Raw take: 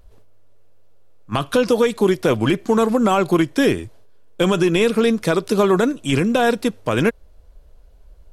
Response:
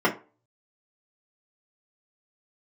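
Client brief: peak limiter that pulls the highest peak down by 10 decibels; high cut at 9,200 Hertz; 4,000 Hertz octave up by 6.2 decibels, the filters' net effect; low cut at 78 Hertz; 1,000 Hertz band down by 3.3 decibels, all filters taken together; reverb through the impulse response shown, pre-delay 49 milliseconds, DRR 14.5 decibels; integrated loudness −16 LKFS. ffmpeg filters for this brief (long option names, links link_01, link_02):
-filter_complex "[0:a]highpass=78,lowpass=9200,equalizer=frequency=1000:width_type=o:gain=-5,equalizer=frequency=4000:width_type=o:gain=8.5,alimiter=limit=-14dB:level=0:latency=1,asplit=2[link_01][link_02];[1:a]atrim=start_sample=2205,adelay=49[link_03];[link_02][link_03]afir=irnorm=-1:irlink=0,volume=-31dB[link_04];[link_01][link_04]amix=inputs=2:normalize=0,volume=7.5dB"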